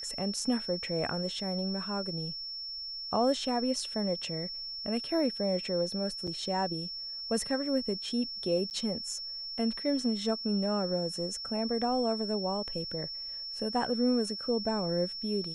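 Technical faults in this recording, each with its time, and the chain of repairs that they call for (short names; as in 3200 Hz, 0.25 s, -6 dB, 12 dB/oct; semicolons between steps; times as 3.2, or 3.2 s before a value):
tone 5400 Hz -37 dBFS
6.27–6.28 gap 5.6 ms
8.7–8.71 gap 9.6 ms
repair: notch 5400 Hz, Q 30; interpolate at 6.27, 5.6 ms; interpolate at 8.7, 9.6 ms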